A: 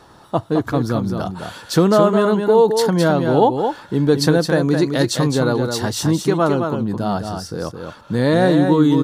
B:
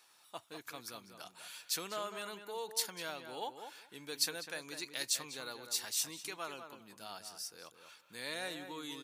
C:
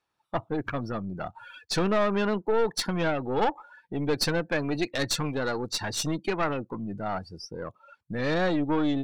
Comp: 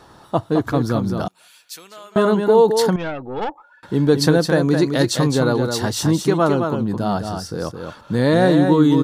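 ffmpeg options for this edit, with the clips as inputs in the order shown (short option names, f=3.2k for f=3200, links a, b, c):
-filter_complex "[0:a]asplit=3[a][b][c];[a]atrim=end=1.282[d];[1:a]atrim=start=1.278:end=2.162[e];[b]atrim=start=2.158:end=2.962[f];[2:a]atrim=start=2.958:end=3.832[g];[c]atrim=start=3.828[h];[d][e]acrossfade=d=0.004:c1=hsin:c2=hsin[i];[i][f]acrossfade=d=0.004:c1=hsin:c2=hsin[j];[j][g]acrossfade=d=0.004:c1=hsin:c2=hsin[k];[k][h]acrossfade=d=0.004:c1=hsin:c2=hsin"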